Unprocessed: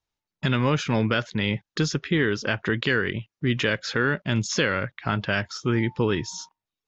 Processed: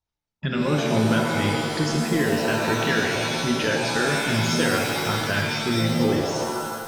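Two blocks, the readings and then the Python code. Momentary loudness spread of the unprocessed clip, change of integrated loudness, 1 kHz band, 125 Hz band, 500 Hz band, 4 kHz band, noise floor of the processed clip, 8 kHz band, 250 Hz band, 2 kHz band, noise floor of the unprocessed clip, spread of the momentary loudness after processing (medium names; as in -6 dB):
5 LU, +2.5 dB, +5.5 dB, +0.5 dB, +3.0 dB, +3.5 dB, under -85 dBFS, no reading, +3.0 dB, +1.5 dB, under -85 dBFS, 3 LU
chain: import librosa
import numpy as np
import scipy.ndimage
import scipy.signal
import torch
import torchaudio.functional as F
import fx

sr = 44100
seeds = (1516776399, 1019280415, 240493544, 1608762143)

y = fx.envelope_sharpen(x, sr, power=1.5)
y = fx.rev_shimmer(y, sr, seeds[0], rt60_s=2.0, semitones=7, shimmer_db=-2, drr_db=1.0)
y = F.gain(torch.from_numpy(y), -2.5).numpy()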